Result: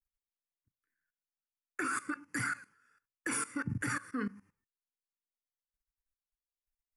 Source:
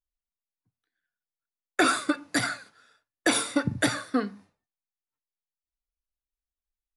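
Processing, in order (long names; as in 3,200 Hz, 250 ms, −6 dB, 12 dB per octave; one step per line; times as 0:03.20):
phaser with its sweep stopped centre 1,600 Hz, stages 4
output level in coarse steps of 18 dB
level +2 dB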